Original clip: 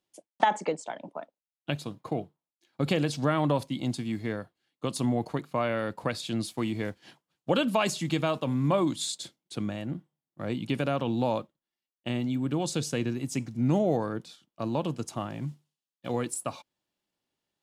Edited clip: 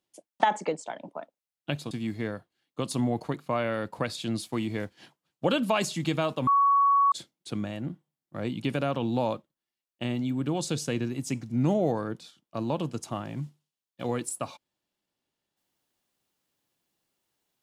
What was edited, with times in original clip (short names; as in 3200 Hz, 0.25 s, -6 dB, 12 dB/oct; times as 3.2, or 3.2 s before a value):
1.91–3.96 cut
8.52–9.17 bleep 1120 Hz -18 dBFS